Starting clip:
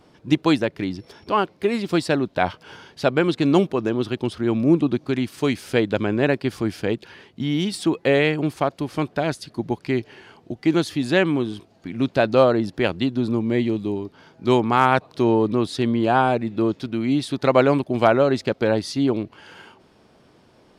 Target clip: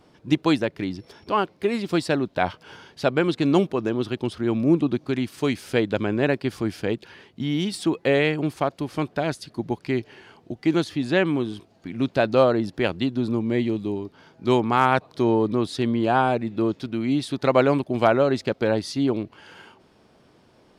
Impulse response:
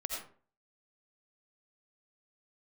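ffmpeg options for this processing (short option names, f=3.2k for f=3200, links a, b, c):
-filter_complex "[0:a]asettb=1/sr,asplit=3[a][b][c];[a]atrim=end=10.844[d];[b]atrim=start=10.84:end=11.26,asetpts=PTS-STARTPTS,afade=t=in:d=0.004:c=qsin,afade=t=out:st=0.416:d=0.004:c=qsin,highshelf=f=6.8k:g=-9[e];[c]atrim=start=11.256[f];[d][e]acrossfade=d=0.004:c1=hsin:c2=qsin[g];[g][f]acrossfade=d=0.004:c1=qsin:c2=hsin,asettb=1/sr,asplit=3[h][i][j];[h]atrim=end=15.114[k];[i]atrim=start=15.11:end=15.62,asetpts=PTS-STARTPTS,afade=t=in:d=0.004:c=qsin,afade=t=out:st=0.506:d=0.004:c=qsin,bandreject=f=2.7k:w=11[l];[j]atrim=start=15.616[m];[k][l]acrossfade=d=0.004:c1=hsin:c2=qsin[n];[n][m]acrossfade=d=0.004:c1=qsin:c2=hsin,volume=-2dB"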